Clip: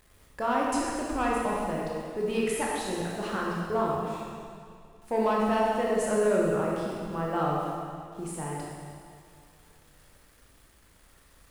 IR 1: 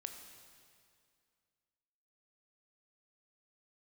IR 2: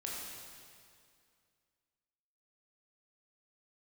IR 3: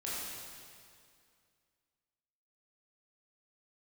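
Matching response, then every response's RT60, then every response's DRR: 2; 2.3 s, 2.3 s, 2.3 s; 5.0 dB, -4.5 dB, -8.5 dB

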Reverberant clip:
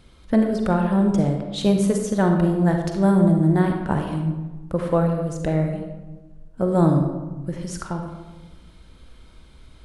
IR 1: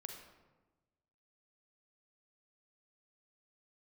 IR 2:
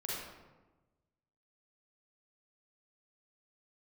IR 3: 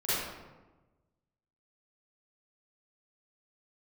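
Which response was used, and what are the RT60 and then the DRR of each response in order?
1; 1.2 s, 1.2 s, 1.2 s; 3.0 dB, -6.0 dB, -14.5 dB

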